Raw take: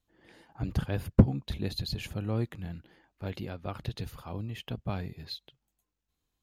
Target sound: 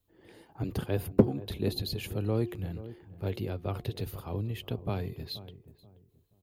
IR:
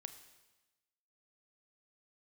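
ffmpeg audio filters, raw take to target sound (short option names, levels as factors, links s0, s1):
-filter_complex "[0:a]highshelf=f=10000:g=12,bandreject=f=356.3:t=h:w=4,bandreject=f=712.6:t=h:w=4,bandreject=f=1068.9:t=h:w=4,acrossover=split=180|3100[s0][s1][s2];[s0]acompressor=threshold=0.01:ratio=6[s3];[s3][s1][s2]amix=inputs=3:normalize=0,equalizer=f=100:t=o:w=0.67:g=8,equalizer=f=400:t=o:w=0.67:g=8,equalizer=f=1600:t=o:w=0.67:g=-3,equalizer=f=6300:t=o:w=0.67:g=-5,asplit=2[s4][s5];[s5]adelay=480,lowpass=f=830:p=1,volume=0.2,asplit=2[s6][s7];[s7]adelay=480,lowpass=f=830:p=1,volume=0.3,asplit=2[s8][s9];[s9]adelay=480,lowpass=f=830:p=1,volume=0.3[s10];[s4][s6][s8][s10]amix=inputs=4:normalize=0"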